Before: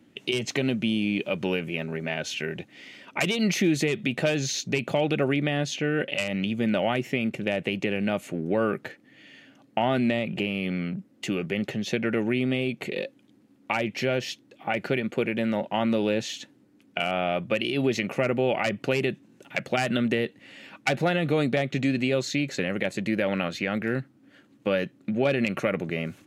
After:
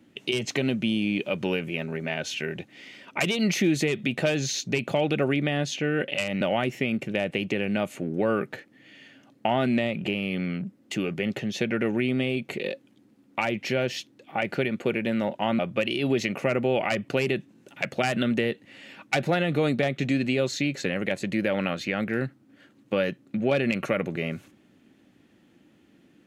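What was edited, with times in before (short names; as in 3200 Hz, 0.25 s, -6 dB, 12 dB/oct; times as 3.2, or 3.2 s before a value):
6.41–6.73 cut
15.91–17.33 cut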